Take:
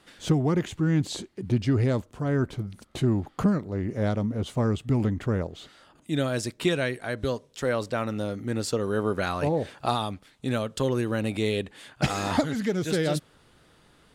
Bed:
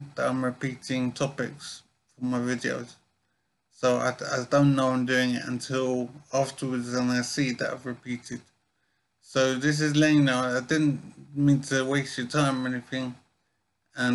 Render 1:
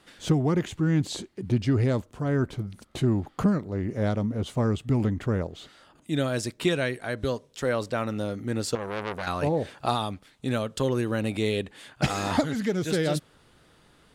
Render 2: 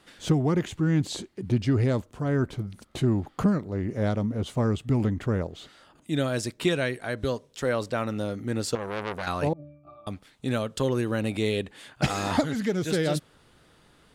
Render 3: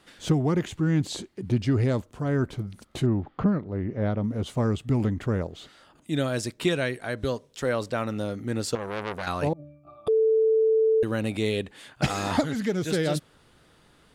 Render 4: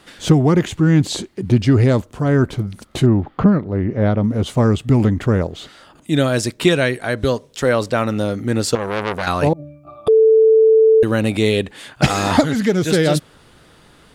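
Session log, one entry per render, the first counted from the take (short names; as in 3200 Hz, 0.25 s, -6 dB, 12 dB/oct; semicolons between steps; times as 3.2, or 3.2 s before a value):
8.75–9.27 core saturation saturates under 2200 Hz
9.53–10.07 octave resonator D, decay 0.67 s
3.06–4.24 air absorption 280 m; 10.08–11.03 bleep 442 Hz -17.5 dBFS
gain +10 dB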